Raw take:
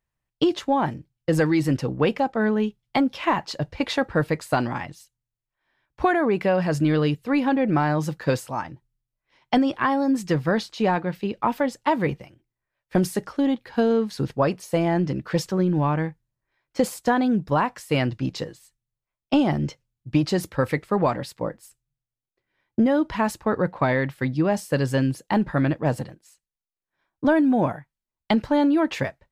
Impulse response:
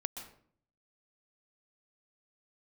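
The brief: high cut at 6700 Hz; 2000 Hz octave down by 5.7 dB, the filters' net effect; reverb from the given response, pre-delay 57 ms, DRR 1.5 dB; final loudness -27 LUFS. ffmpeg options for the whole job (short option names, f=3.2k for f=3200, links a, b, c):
-filter_complex "[0:a]lowpass=6.7k,equalizer=f=2k:t=o:g=-7.5,asplit=2[a][b];[1:a]atrim=start_sample=2205,adelay=57[c];[b][c]afir=irnorm=-1:irlink=0,volume=-1.5dB[d];[a][d]amix=inputs=2:normalize=0,volume=-5dB"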